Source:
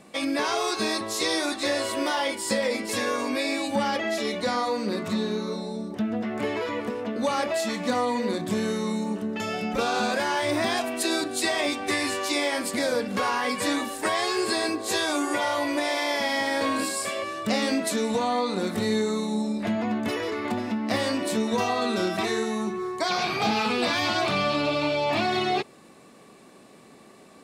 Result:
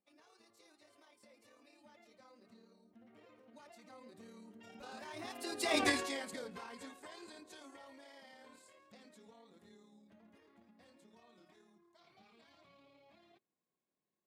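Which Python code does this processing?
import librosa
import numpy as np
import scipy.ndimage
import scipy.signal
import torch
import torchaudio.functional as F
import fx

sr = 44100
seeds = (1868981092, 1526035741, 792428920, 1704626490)

y = fx.doppler_pass(x, sr, speed_mps=18, closest_m=2.3, pass_at_s=11.2)
y = fx.stretch_grains(y, sr, factor=0.52, grain_ms=55.0)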